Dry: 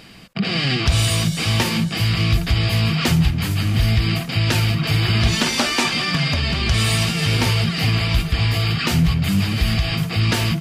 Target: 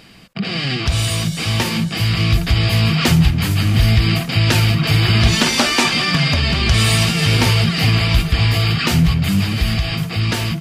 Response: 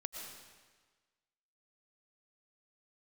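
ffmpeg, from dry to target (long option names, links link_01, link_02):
-af "dynaudnorm=framelen=610:gausssize=7:maxgain=11.5dB,volume=-1dB"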